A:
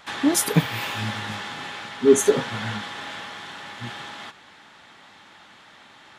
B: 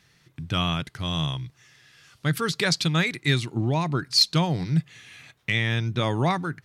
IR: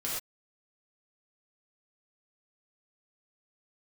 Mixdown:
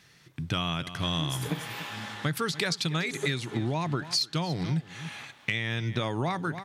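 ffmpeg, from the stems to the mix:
-filter_complex "[0:a]adelay=950,volume=0.316,asplit=3[s0][s1][s2];[s1]volume=0.158[s3];[s2]volume=0.168[s4];[1:a]volume=1.41,asplit=3[s5][s6][s7];[s6]volume=0.112[s8];[s7]apad=whole_len=314546[s9];[s0][s9]sidechaincompress=threshold=0.0447:ratio=8:attack=16:release=331[s10];[2:a]atrim=start_sample=2205[s11];[s3][s11]afir=irnorm=-1:irlink=0[s12];[s4][s8]amix=inputs=2:normalize=0,aecho=0:1:287:1[s13];[s10][s5][s12][s13]amix=inputs=4:normalize=0,lowshelf=f=83:g=-8.5,acompressor=threshold=0.0562:ratio=12"

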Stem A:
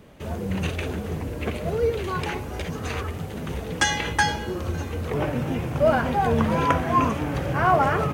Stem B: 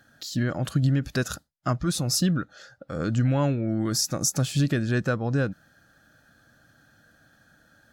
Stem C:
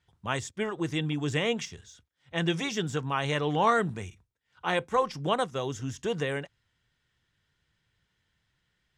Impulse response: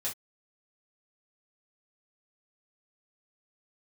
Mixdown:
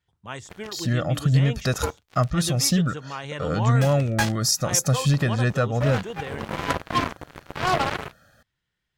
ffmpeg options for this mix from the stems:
-filter_complex "[0:a]acrusher=bits=2:mix=0:aa=0.5,volume=0.631,asplit=2[s0][s1];[s1]volume=0.075[s2];[1:a]aecho=1:1:1.6:0.58,adelay=500,volume=1.26[s3];[2:a]volume=0.562,asplit=2[s4][s5];[s5]apad=whole_len=358783[s6];[s0][s6]sidechaincompress=threshold=0.00562:ratio=3:attack=6.9:release=120[s7];[3:a]atrim=start_sample=2205[s8];[s2][s8]afir=irnorm=-1:irlink=0[s9];[s7][s3][s4][s9]amix=inputs=4:normalize=0"

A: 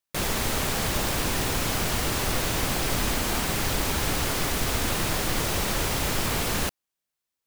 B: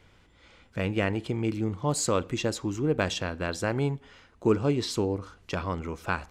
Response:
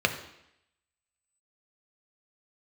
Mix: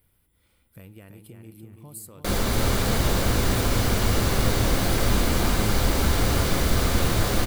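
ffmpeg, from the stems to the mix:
-filter_complex "[0:a]adelay=2100,volume=0.668,asplit=3[s0][s1][s2];[s1]volume=0.211[s3];[s2]volume=0.596[s4];[1:a]highshelf=f=4900:g=9.5,acompressor=threshold=0.0251:ratio=4,aexciter=amount=12.7:drive=8.8:freq=9800,volume=0.15,asplit=2[s5][s6];[s6]volume=0.501[s7];[2:a]atrim=start_sample=2205[s8];[s3][s8]afir=irnorm=-1:irlink=0[s9];[s4][s7]amix=inputs=2:normalize=0,aecho=0:1:334|668|1002|1336|1670|2004:1|0.4|0.16|0.064|0.0256|0.0102[s10];[s0][s5][s9][s10]amix=inputs=4:normalize=0,lowshelf=f=260:g=9.5"

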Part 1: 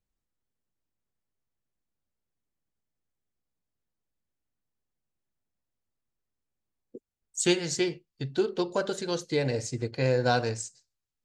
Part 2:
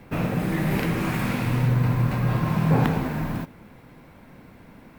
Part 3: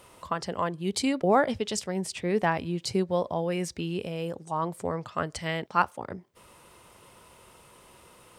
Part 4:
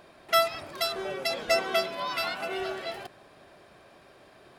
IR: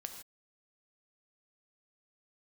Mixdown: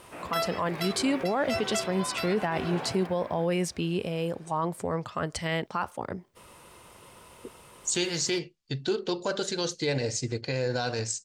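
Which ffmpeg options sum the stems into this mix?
-filter_complex "[0:a]alimiter=limit=0.141:level=0:latency=1:release=214,lowpass=6300,highshelf=f=3100:g=10,adelay=500,volume=1.12[s0];[1:a]flanger=delay=17:depth=2.3:speed=0.25,acrossover=split=340 3700:gain=0.0891 1 0.178[s1][s2][s3];[s1][s2][s3]amix=inputs=3:normalize=0,volume=0.447[s4];[2:a]volume=1.33[s5];[3:a]volume=0.596[s6];[s0][s4][s5][s6]amix=inputs=4:normalize=0,alimiter=limit=0.119:level=0:latency=1:release=12"

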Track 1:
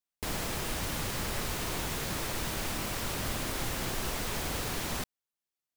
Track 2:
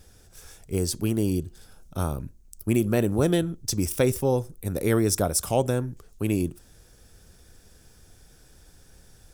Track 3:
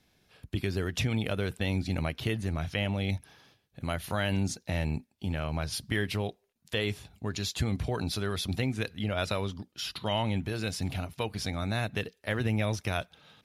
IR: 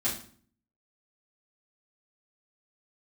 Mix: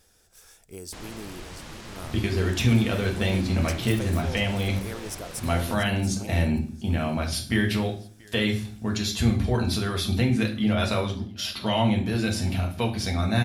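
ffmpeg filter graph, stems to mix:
-filter_complex "[0:a]lowpass=6900,adelay=700,volume=0.473[s0];[1:a]lowshelf=f=320:g=-11,acompressor=threshold=0.00708:ratio=1.5,volume=0.631,asplit=3[s1][s2][s3];[s2]volume=0.0708[s4];[s3]volume=0.376[s5];[2:a]adelay=1600,volume=0.891,asplit=3[s6][s7][s8];[s7]volume=0.708[s9];[s8]volume=0.0944[s10];[3:a]atrim=start_sample=2205[s11];[s4][s9]amix=inputs=2:normalize=0[s12];[s12][s11]afir=irnorm=-1:irlink=0[s13];[s5][s10]amix=inputs=2:normalize=0,aecho=0:1:685:1[s14];[s0][s1][s6][s13][s14]amix=inputs=5:normalize=0"

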